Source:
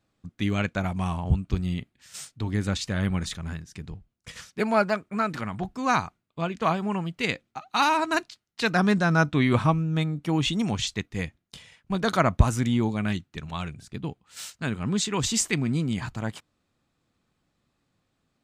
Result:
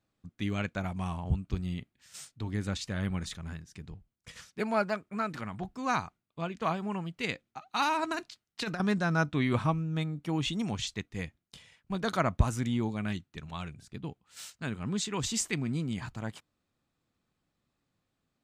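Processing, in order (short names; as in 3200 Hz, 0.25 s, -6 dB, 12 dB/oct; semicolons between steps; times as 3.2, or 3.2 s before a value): 8.02–8.8 negative-ratio compressor -25 dBFS, ratio -0.5; gain -6.5 dB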